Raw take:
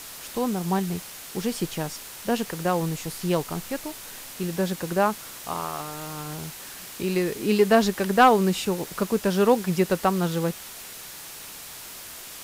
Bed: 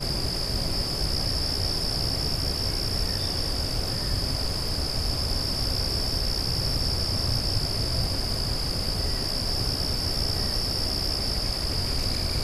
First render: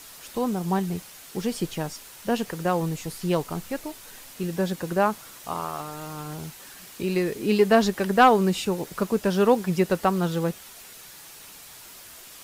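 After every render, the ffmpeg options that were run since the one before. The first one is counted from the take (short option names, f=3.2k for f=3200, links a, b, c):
-af "afftdn=nr=6:nf=-41"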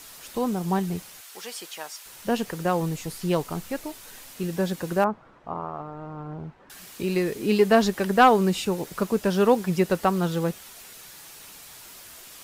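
-filter_complex "[0:a]asettb=1/sr,asplit=3[a][b][c];[a]atrim=end=1.214[d];[b]atrim=start=1.21:end=2.06,asetpts=PTS-STARTPTS,afade=t=in:d=0.004:c=qsin,afade=t=out:st=0.846:d=0.004:c=qsin,highpass=840[e];[c]atrim=start=2.056[f];[d][e]acrossfade=d=0.004:c1=hsin:c2=qsin[g];[g][f]acrossfade=d=0.004:c1=qsin:c2=hsin,asettb=1/sr,asplit=3[h][i][j];[h]atrim=end=5.044[k];[i]atrim=start=5.04:end=6.7,asetpts=PTS-STARTPTS,afade=t=in:d=0.004:c=qsin,afade=t=out:st=1.656:d=0.004:c=qsin,lowpass=1.1k[l];[j]atrim=start=6.696[m];[k][l]acrossfade=d=0.004:c1=hsin:c2=qsin[n];[n][m]acrossfade=d=0.004:c1=qsin:c2=hsin"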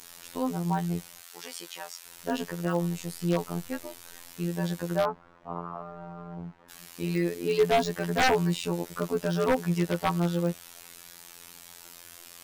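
-af "afftfilt=real='hypot(re,im)*cos(PI*b)':imag='0':win_size=2048:overlap=0.75,aeval=exprs='0.188*(abs(mod(val(0)/0.188+3,4)-2)-1)':c=same"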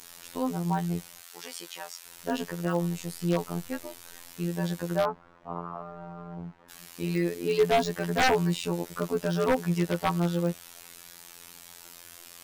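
-af anull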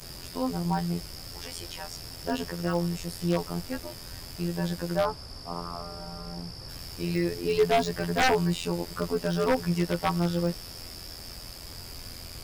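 -filter_complex "[1:a]volume=-16dB[a];[0:a][a]amix=inputs=2:normalize=0"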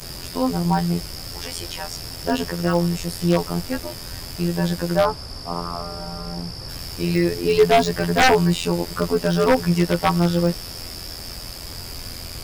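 -af "volume=8dB"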